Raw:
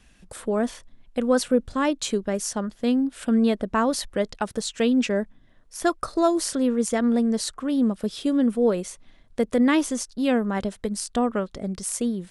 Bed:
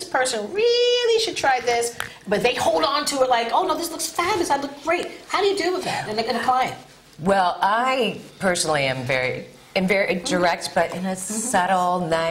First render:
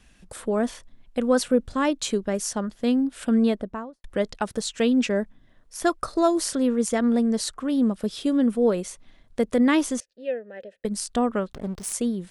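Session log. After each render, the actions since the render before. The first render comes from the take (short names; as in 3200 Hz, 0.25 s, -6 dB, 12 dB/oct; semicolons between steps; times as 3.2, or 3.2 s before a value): 3.38–4.04 studio fade out; 10–10.85 vowel filter e; 11.53–11.93 backlash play -31 dBFS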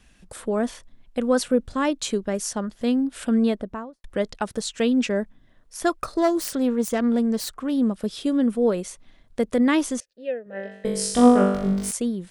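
2.81–3.85 upward compressor, threshold -31 dBFS; 6.01–7.73 self-modulated delay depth 0.098 ms; 10.44–11.91 flutter echo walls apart 3.5 m, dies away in 0.85 s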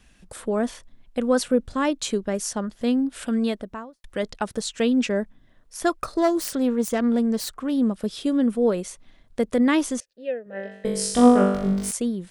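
3.27–4.23 tilt shelf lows -3.5 dB, about 1500 Hz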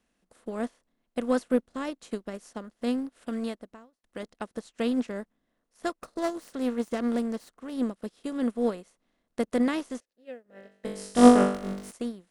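per-bin compression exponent 0.6; upward expander 2.5:1, over -33 dBFS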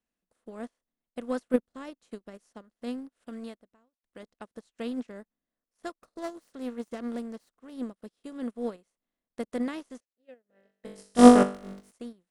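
in parallel at -2 dB: level quantiser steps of 20 dB; on the sum: upward expander 1.5:1, over -44 dBFS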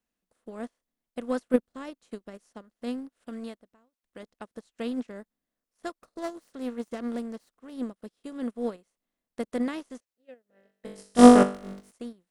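gain +2 dB; limiter -2 dBFS, peak gain reduction 2.5 dB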